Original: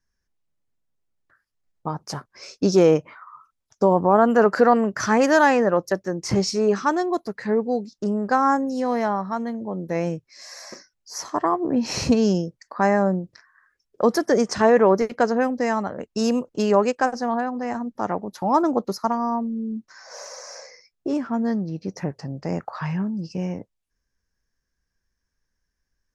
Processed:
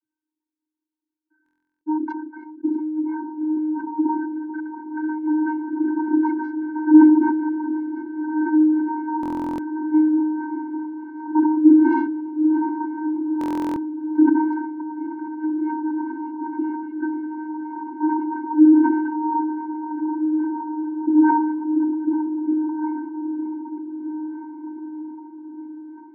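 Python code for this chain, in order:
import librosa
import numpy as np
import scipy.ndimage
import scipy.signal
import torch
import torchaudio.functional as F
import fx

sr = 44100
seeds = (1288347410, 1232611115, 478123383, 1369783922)

y = fx.wiener(x, sr, points=15)
y = fx.dynamic_eq(y, sr, hz=760.0, q=1.4, threshold_db=-30.0, ratio=4.0, max_db=4)
y = fx.echo_swing(y, sr, ms=764, ratio=3, feedback_pct=78, wet_db=-17.5)
y = fx.rotary_switch(y, sr, hz=6.0, then_hz=0.6, switch_at_s=9.85)
y = fx.over_compress(y, sr, threshold_db=-22.0, ratio=-0.5)
y = fx.vocoder(y, sr, bands=32, carrier='square', carrier_hz=309.0)
y = scipy.signal.sosfilt(scipy.signal.cheby1(3, 1.0, 1300.0, 'lowpass', fs=sr, output='sos'), y)
y = fx.echo_diffused(y, sr, ms=1588, feedback_pct=42, wet_db=-9.5)
y = fx.buffer_glitch(y, sr, at_s=(1.44, 9.21, 13.39), block=1024, repeats=15)
y = fx.sustainer(y, sr, db_per_s=38.0)
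y = y * librosa.db_to_amplitude(3.0)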